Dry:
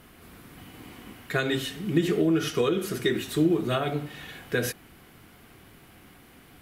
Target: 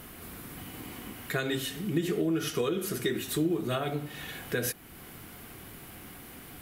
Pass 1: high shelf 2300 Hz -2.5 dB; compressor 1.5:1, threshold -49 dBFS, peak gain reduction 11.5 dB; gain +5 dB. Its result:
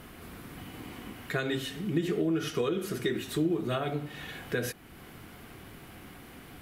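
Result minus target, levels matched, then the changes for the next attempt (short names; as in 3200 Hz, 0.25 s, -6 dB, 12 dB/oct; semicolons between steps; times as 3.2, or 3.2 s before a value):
8000 Hz band -6.5 dB
add after compressor: high shelf 7400 Hz +11.5 dB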